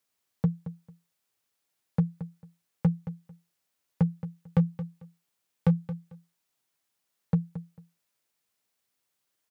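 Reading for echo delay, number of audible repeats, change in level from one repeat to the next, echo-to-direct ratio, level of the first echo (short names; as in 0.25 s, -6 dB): 0.223 s, 2, -14.0 dB, -13.0 dB, -13.0 dB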